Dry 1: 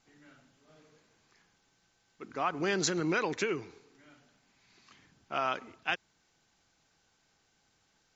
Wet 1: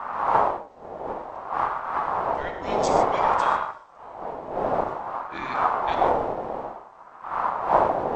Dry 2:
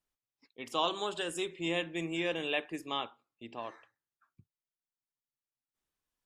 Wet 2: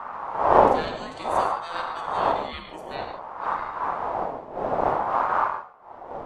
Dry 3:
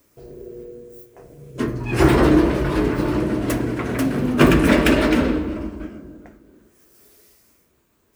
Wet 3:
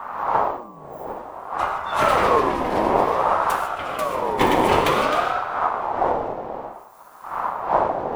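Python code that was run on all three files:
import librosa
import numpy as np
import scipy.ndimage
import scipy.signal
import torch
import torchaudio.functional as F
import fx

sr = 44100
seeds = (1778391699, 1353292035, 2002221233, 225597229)

y = fx.dmg_wind(x, sr, seeds[0], corner_hz=250.0, level_db=-22.0)
y = fx.rev_gated(y, sr, seeds[1], gate_ms=170, shape='flat', drr_db=4.0)
y = fx.ring_lfo(y, sr, carrier_hz=830.0, swing_pct=25, hz=0.55)
y = y * librosa.db_to_amplitude(-2.0)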